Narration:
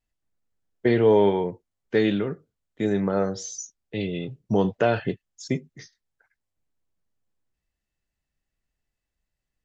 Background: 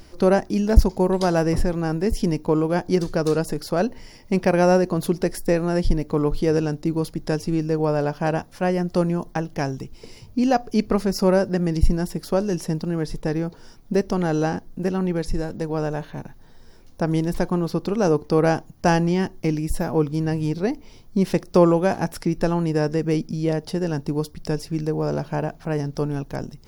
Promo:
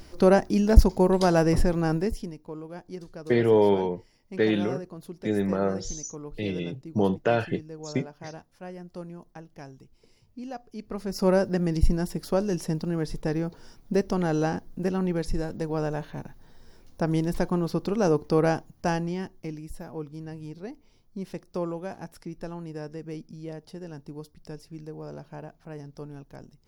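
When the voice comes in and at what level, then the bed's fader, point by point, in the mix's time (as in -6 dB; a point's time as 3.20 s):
2.45 s, -2.0 dB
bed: 1.97 s -1 dB
2.35 s -18.5 dB
10.79 s -18.5 dB
11.28 s -3.5 dB
18.37 s -3.5 dB
19.74 s -15.5 dB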